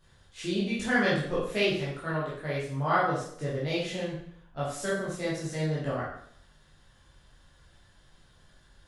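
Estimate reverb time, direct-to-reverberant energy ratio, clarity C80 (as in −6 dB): 0.65 s, −9.5 dB, 6.0 dB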